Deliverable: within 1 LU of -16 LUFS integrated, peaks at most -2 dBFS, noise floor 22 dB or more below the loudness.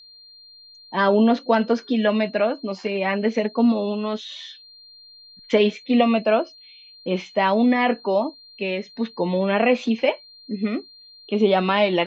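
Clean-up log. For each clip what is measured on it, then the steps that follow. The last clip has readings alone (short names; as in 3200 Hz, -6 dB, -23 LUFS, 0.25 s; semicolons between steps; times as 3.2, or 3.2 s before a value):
steady tone 4200 Hz; tone level -45 dBFS; loudness -21.5 LUFS; peak -5.0 dBFS; loudness target -16.0 LUFS
-> notch 4200 Hz, Q 30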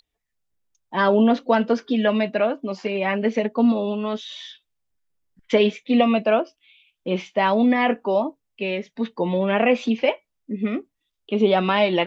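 steady tone none; loudness -21.5 LUFS; peak -5.0 dBFS; loudness target -16.0 LUFS
-> gain +5.5 dB; limiter -2 dBFS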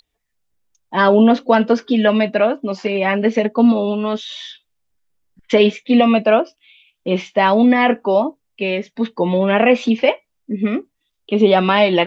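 loudness -16.0 LUFS; peak -2.0 dBFS; noise floor -73 dBFS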